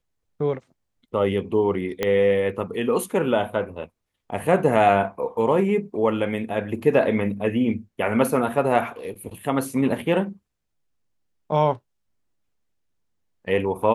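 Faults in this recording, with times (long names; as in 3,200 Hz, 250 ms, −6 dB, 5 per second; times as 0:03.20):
0:02.03: click −9 dBFS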